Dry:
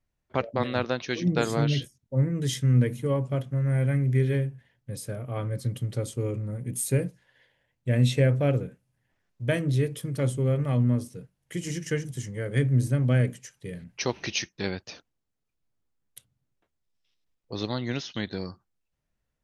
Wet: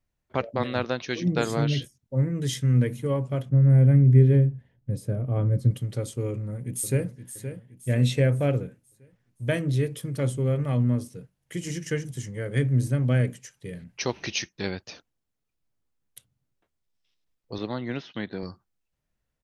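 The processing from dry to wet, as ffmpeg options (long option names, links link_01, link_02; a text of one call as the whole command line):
ffmpeg -i in.wav -filter_complex "[0:a]asettb=1/sr,asplit=3[link_01][link_02][link_03];[link_01]atrim=end=3.494[link_04];[link_02]atrim=start=3.49:end=5.71,asetpts=PTS-STARTPTS,afade=type=in:duration=0.004:curve=qsin,afade=type=out:start_time=2.216:duration=0.004:curve=qsin,tiltshelf=frequency=710:gain=8.5[link_05];[link_03]atrim=start=5.706[link_06];[link_04][link_05]acrossfade=duration=0.004:curve1=hsin:curve2=qsin[link_07];[link_07][link_06]acrossfade=duration=0.004:curve1=qsin:curve2=hsin,asplit=2[link_08][link_09];[link_09]afade=type=in:start_time=6.31:duration=0.01,afade=type=out:start_time=7.07:duration=0.01,aecho=0:1:520|1040|1560|2080|2600:0.298538|0.134342|0.060454|0.0272043|0.0122419[link_10];[link_08][link_10]amix=inputs=2:normalize=0,asettb=1/sr,asplit=3[link_11][link_12][link_13];[link_11]atrim=end=17.584[link_14];[link_12]atrim=start=17.58:end=18.43,asetpts=PTS-STARTPTS,afade=type=in:duration=0.004:curve=qsin,afade=type=out:start_time=0.846:duration=0.004:curve=qsin,highpass=130,lowpass=2600[link_15];[link_13]atrim=start=18.426[link_16];[link_14][link_15]acrossfade=duration=0.004:curve1=hsin:curve2=qsin[link_17];[link_17][link_16]acrossfade=duration=0.004:curve1=qsin:curve2=hsin" out.wav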